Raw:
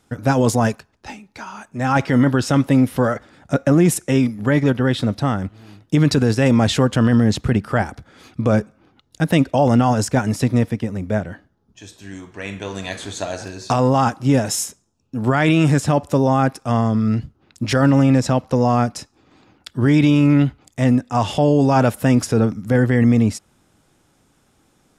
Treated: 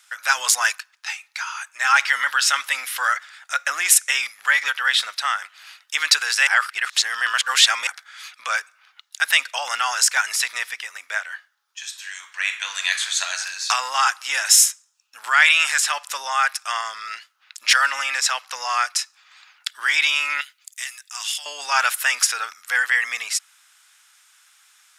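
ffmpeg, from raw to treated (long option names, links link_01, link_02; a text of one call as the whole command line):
ffmpeg -i in.wav -filter_complex "[0:a]asettb=1/sr,asplit=3[link_01][link_02][link_03];[link_01]atrim=end=20.414[link_04];[link_02]atrim=start=20.41:end=21.46,asetpts=PTS-STARTPTS,afade=type=in:duration=0.004:curve=qsin,afade=type=out:start_time=1.046:duration=0.004:curve=qsin,aderivative[link_05];[link_03]atrim=start=21.456[link_06];[link_04][link_05]acrossfade=duration=0.004:curve1=hsin:curve2=qsin[link_07];[link_07][link_06]acrossfade=duration=0.004:curve1=qsin:curve2=hsin,asplit=3[link_08][link_09][link_10];[link_08]atrim=end=6.472[link_11];[link_09]atrim=start=6.468:end=7.872,asetpts=PTS-STARTPTS,areverse[link_12];[link_10]atrim=start=7.868[link_13];[link_11][link_12]acrossfade=duration=0.004:curve1=hsin:curve2=hsin[link_14];[link_14][link_13]acrossfade=duration=0.004:curve1=hsin:curve2=hsin,highpass=frequency=1400:width=0.5412,highpass=frequency=1400:width=1.3066,acontrast=78,volume=3.5dB" out.wav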